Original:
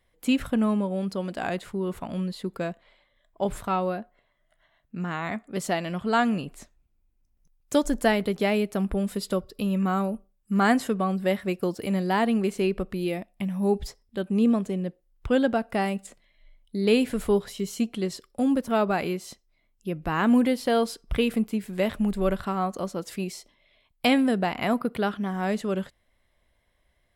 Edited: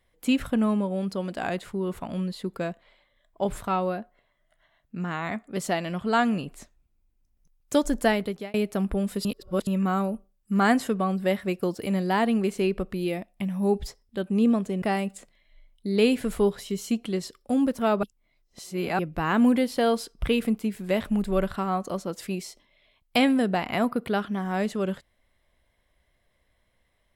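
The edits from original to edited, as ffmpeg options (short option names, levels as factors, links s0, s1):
-filter_complex "[0:a]asplit=7[s0][s1][s2][s3][s4][s5][s6];[s0]atrim=end=8.54,asetpts=PTS-STARTPTS,afade=t=out:st=7.98:d=0.56:c=qsin[s7];[s1]atrim=start=8.54:end=9.252,asetpts=PTS-STARTPTS,afade=t=in:d=0.004:c=hsin[s8];[s2]atrim=start=9.248:end=9.672,asetpts=PTS-STARTPTS,areverse[s9];[s3]atrim=start=9.668:end=14.822[s10];[s4]atrim=start=15.708:end=18.922[s11];[s5]atrim=start=18.918:end=19.882,asetpts=PTS-STARTPTS,areverse[s12];[s6]atrim=start=19.878[s13];[s7][s8]concat=n=2:v=0:a=1[s14];[s14][s9]acrossfade=d=0.004:c1=hsin:c2=hsin[s15];[s15][s10]acrossfade=d=0.004:c1=hsin:c2=hsin[s16];[s16][s11]acrossfade=d=0.004:c1=hsin:c2=hsin[s17];[s17][s12]acrossfade=d=0.004:c1=hsin:c2=hsin[s18];[s18][s13]acrossfade=d=0.004:c1=hsin:c2=hsin"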